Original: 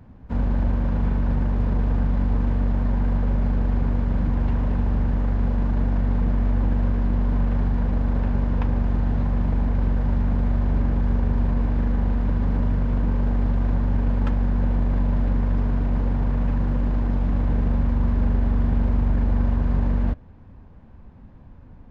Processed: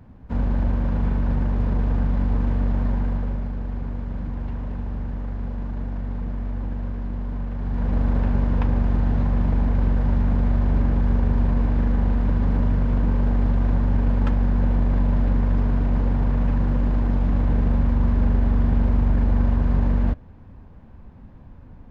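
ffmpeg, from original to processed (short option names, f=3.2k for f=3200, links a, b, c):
-af "volume=8.5dB,afade=t=out:st=2.85:d=0.65:silence=0.446684,afade=t=in:st=7.59:d=0.4:silence=0.375837"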